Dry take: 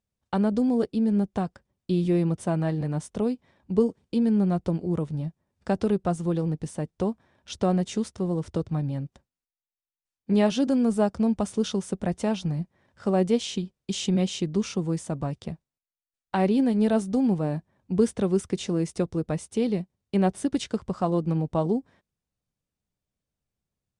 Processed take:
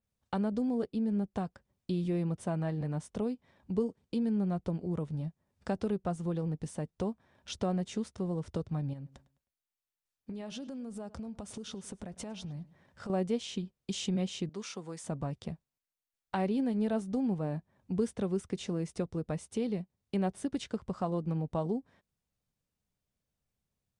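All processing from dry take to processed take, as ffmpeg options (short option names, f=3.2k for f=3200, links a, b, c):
-filter_complex "[0:a]asettb=1/sr,asplit=3[a][b][c];[a]atrim=end=8.934[d];[b]atrim=start=8.93:end=13.1,asetpts=PTS-STARTPTS,afade=t=in:d=0.004:c=qsin,afade=t=out:st=4.166:d=0.004:c=qsin,acompressor=threshold=-35dB:ratio=12:attack=3.2:release=140:knee=1:detection=peak,asplit=2[e][f];[f]adelay=104,lowpass=f=4.3k:p=1,volume=-20dB,asplit=2[g][h];[h]adelay=104,lowpass=f=4.3k:p=1,volume=0.33,asplit=2[i][j];[j]adelay=104,lowpass=f=4.3k:p=1,volume=0.33[k];[e][g][i][k]amix=inputs=4:normalize=0,atrim=end_sample=183897[l];[c]atrim=start=13.096[m];[d][l]acrossfade=d=0.004:c1=hsin:c2=qsin[n];[n][m]acrossfade=d=0.004:c1=qsin:c2=hsin,asettb=1/sr,asplit=3[o][p][q];[o]atrim=end=14.494[r];[p]atrim=start=14.49:end=15.04,asetpts=PTS-STARTPTS,afade=t=in:d=0.004:c=qsin,afade=t=out:st=0.546:d=0.004:c=qsin,highpass=f=900:p=1,equalizer=f=2.8k:w=4.9:g=-3.5[s];[q]atrim=start=15.036[t];[r][s]acrossfade=d=0.004:c1=hsin:c2=qsin[u];[u][t]acrossfade=d=0.004:c1=qsin:c2=hsin,equalizer=f=330:w=6.1:g=-3.5,acompressor=threshold=-43dB:ratio=1.5,adynamicequalizer=threshold=0.002:dfrequency=3500:dqfactor=0.7:tfrequency=3500:tqfactor=0.7:attack=5:release=100:ratio=0.375:range=2.5:mode=cutabove:tftype=highshelf"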